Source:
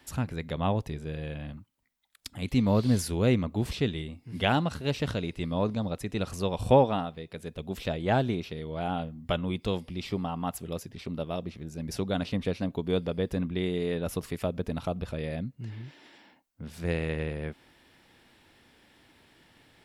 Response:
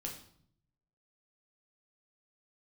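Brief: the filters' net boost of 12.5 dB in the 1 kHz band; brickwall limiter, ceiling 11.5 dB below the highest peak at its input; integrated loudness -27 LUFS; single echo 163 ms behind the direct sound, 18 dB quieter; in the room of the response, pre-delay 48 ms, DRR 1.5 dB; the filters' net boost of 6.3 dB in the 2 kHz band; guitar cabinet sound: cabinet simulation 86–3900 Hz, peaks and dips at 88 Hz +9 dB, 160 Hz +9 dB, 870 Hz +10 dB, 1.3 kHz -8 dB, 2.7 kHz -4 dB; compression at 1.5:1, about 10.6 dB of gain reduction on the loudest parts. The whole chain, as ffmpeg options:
-filter_complex "[0:a]equalizer=f=1000:t=o:g=7,equalizer=f=2000:t=o:g=8.5,acompressor=threshold=0.00794:ratio=1.5,alimiter=limit=0.0668:level=0:latency=1,aecho=1:1:163:0.126,asplit=2[s0][s1];[1:a]atrim=start_sample=2205,adelay=48[s2];[s1][s2]afir=irnorm=-1:irlink=0,volume=1[s3];[s0][s3]amix=inputs=2:normalize=0,highpass=86,equalizer=f=88:t=q:w=4:g=9,equalizer=f=160:t=q:w=4:g=9,equalizer=f=870:t=q:w=4:g=10,equalizer=f=1300:t=q:w=4:g=-8,equalizer=f=2700:t=q:w=4:g=-4,lowpass=f=3900:w=0.5412,lowpass=f=3900:w=1.3066,volume=1.41"

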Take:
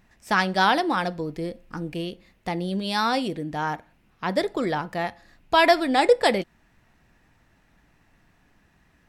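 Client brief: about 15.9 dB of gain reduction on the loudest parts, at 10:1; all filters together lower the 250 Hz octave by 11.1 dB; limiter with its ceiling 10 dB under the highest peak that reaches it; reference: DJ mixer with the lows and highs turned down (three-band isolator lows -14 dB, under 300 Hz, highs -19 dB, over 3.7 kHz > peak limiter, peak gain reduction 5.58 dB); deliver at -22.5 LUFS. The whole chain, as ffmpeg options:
-filter_complex "[0:a]equalizer=f=250:t=o:g=-8.5,acompressor=threshold=0.0316:ratio=10,alimiter=level_in=1.5:limit=0.0631:level=0:latency=1,volume=0.668,acrossover=split=300 3700:gain=0.2 1 0.112[s0][s1][s2];[s0][s1][s2]amix=inputs=3:normalize=0,volume=10,alimiter=limit=0.282:level=0:latency=1"

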